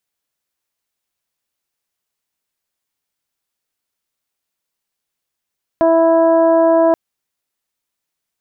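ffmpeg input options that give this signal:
-f lavfi -i "aevalsrc='0.178*sin(2*PI*329*t)+0.316*sin(2*PI*658*t)+0.1*sin(2*PI*987*t)+0.02*sin(2*PI*1316*t)+0.0224*sin(2*PI*1645*t)':d=1.13:s=44100"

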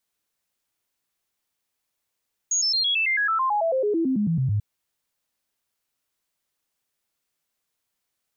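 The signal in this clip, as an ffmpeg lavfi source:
-f lavfi -i "aevalsrc='0.106*clip(min(mod(t,0.11),0.11-mod(t,0.11))/0.005,0,1)*sin(2*PI*6660*pow(2,-floor(t/0.11)/3)*mod(t,0.11))':d=2.09:s=44100"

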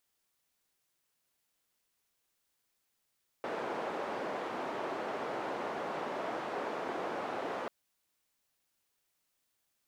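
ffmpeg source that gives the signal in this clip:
-f lavfi -i "anoisesrc=c=white:d=4.24:r=44100:seed=1,highpass=f=340,lowpass=f=790,volume=-16.4dB"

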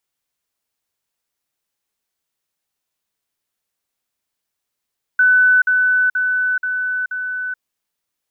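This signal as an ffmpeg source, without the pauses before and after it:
-f lavfi -i "aevalsrc='pow(10,(-9-3*floor(t/0.48))/20)*sin(2*PI*1500*t)*clip(min(mod(t,0.48),0.43-mod(t,0.48))/0.005,0,1)':d=2.4:s=44100"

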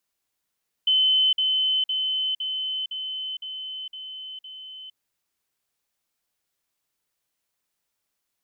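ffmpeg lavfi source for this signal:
-f lavfi -i "aevalsrc='pow(10,(-16.5-3*floor(t/0.51))/20)*sin(2*PI*3050*t)*clip(min(mod(t,0.51),0.46-mod(t,0.51))/0.005,0,1)':d=4.08:s=44100"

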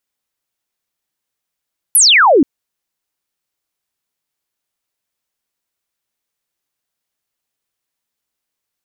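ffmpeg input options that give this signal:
-f lavfi -i "aevalsrc='0.531*clip(t/0.002,0,1)*clip((0.48-t)/0.002,0,1)*sin(2*PI*12000*0.48/log(250/12000)*(exp(log(250/12000)*t/0.48)-1))':d=0.48:s=44100"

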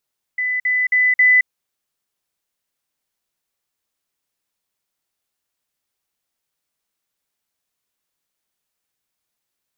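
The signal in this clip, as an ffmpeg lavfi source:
-f lavfi -i "aevalsrc='pow(10,(-18+3*floor(t/0.27))/20)*sin(2*PI*2000*t)*clip(min(mod(t,0.27),0.22-mod(t,0.27))/0.005,0,1)':d=1.08:s=44100"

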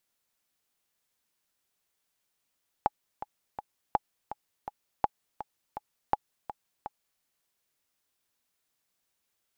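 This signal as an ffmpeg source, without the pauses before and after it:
-f lavfi -i "aevalsrc='pow(10,(-10-13*gte(mod(t,3*60/165),60/165))/20)*sin(2*PI*838*mod(t,60/165))*exp(-6.91*mod(t,60/165)/0.03)':d=4.36:s=44100"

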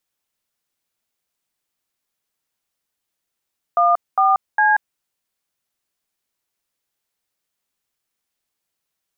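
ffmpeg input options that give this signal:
-f lavfi -i "aevalsrc='0.188*clip(min(mod(t,0.406),0.184-mod(t,0.406))/0.002,0,1)*(eq(floor(t/0.406),0)*(sin(2*PI*697*mod(t,0.406))+sin(2*PI*1209*mod(t,0.406)))+eq(floor(t/0.406),1)*(sin(2*PI*770*mod(t,0.406))+sin(2*PI*1209*mod(t,0.406)))+eq(floor(t/0.406),2)*(sin(2*PI*852*mod(t,0.406))+sin(2*PI*1633*mod(t,0.406))))':d=1.218:s=44100"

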